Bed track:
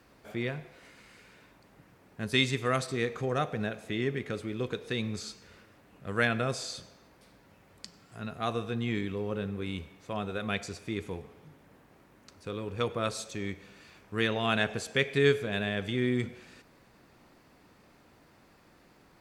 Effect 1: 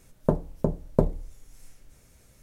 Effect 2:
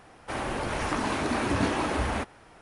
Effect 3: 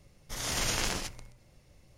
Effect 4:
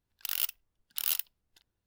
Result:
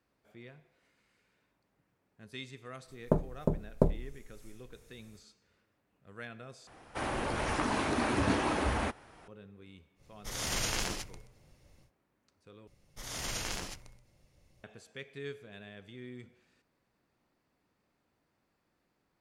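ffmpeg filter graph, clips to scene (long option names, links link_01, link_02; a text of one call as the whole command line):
ffmpeg -i bed.wav -i cue0.wav -i cue1.wav -i cue2.wav -filter_complex "[3:a]asplit=2[link_01][link_02];[0:a]volume=-18dB,asplit=3[link_03][link_04][link_05];[link_03]atrim=end=6.674[link_06];[2:a]atrim=end=2.61,asetpts=PTS-STARTPTS,volume=-3dB[link_07];[link_04]atrim=start=9.276:end=12.674[link_08];[link_02]atrim=end=1.97,asetpts=PTS-STARTPTS,volume=-6.5dB[link_09];[link_05]atrim=start=14.636[link_10];[1:a]atrim=end=2.42,asetpts=PTS-STARTPTS,volume=-4.5dB,afade=type=in:duration=0.1,afade=type=out:start_time=2.32:duration=0.1,adelay=2830[link_11];[link_01]atrim=end=1.97,asetpts=PTS-STARTPTS,volume=-2.5dB,afade=type=in:duration=0.1,afade=type=out:start_time=1.87:duration=0.1,adelay=9950[link_12];[link_06][link_07]acrossfade=duration=0.004:curve1=hsin:curve2=hsin[link_13];[link_13][link_08]acrossfade=duration=0.004:curve1=hsin:curve2=hsin[link_14];[link_14][link_09]acrossfade=duration=0.004:curve1=hsin:curve2=hsin[link_15];[link_15][link_10]acrossfade=duration=0.004:curve1=hsin:curve2=hsin[link_16];[link_16][link_11][link_12]amix=inputs=3:normalize=0" out.wav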